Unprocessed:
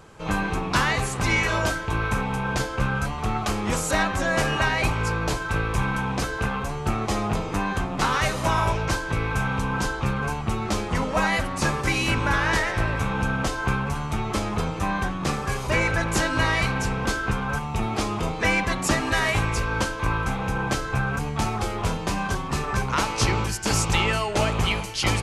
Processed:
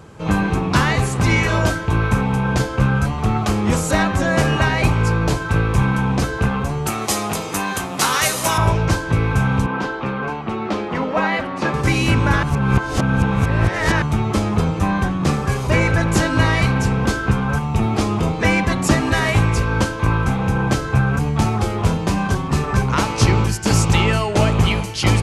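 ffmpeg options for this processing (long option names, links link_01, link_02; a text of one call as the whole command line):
ffmpeg -i in.wav -filter_complex "[0:a]asettb=1/sr,asplit=3[link_01][link_02][link_03];[link_01]atrim=end=6.864[link_04];[link_02]atrim=start=6.86:end=8.58,asetpts=PTS-STARTPTS,afade=type=in:duration=0.004:curve=qsin,afade=type=out:start_time=1.716:duration=0.004:curve=qsin,aemphasis=mode=production:type=riaa[link_05];[link_03]atrim=start=8.576[link_06];[link_04][link_05]acrossfade=duration=0.004:curve1=hsin:curve2=qsin[link_07];[link_07][link_06]acrossfade=duration=0.004:curve1=qsin:curve2=hsin,asettb=1/sr,asplit=3[link_08][link_09][link_10];[link_08]atrim=end=9.664[link_11];[link_09]atrim=start=9.66:end=11.74,asetpts=PTS-STARTPTS,afade=type=in:duration=0.004:curve=qsin,afade=type=out:start_time=2.076:duration=0.004:curve=qsin,acrossover=split=210 4200:gain=0.112 1 0.112[link_12][link_13][link_14];[link_12][link_13][link_14]amix=inputs=3:normalize=0[link_15];[link_10]atrim=start=11.736[link_16];[link_11][link_15]acrossfade=duration=0.004:curve1=hsin:curve2=qsin[link_17];[link_17][link_16]acrossfade=duration=0.004:curve1=qsin:curve2=hsin,asplit=3[link_18][link_19][link_20];[link_18]atrim=end=12.432[link_21];[link_19]atrim=start=12.428:end=14.022,asetpts=PTS-STARTPTS,areverse[link_22];[link_20]atrim=start=14.018[link_23];[link_21][link_22]acrossfade=duration=0.004:curve1=hsin:curve2=hsin[link_24];[link_24][link_23]acrossfade=duration=0.004:curve1=hsin:curve2=hsin,highpass=64,lowshelf=frequency=380:gain=9,volume=2.5dB" out.wav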